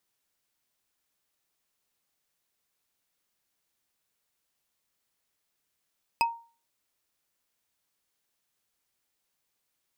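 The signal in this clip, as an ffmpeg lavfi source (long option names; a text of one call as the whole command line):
ffmpeg -f lavfi -i "aevalsrc='0.119*pow(10,-3*t/0.37)*sin(2*PI*928*t)+0.0794*pow(10,-3*t/0.11)*sin(2*PI*2558.5*t)+0.0531*pow(10,-3*t/0.049)*sin(2*PI*5014.9*t)+0.0355*pow(10,-3*t/0.027)*sin(2*PI*8289.8*t)+0.0237*pow(10,-3*t/0.017)*sin(2*PI*12379.5*t)':duration=0.45:sample_rate=44100" out.wav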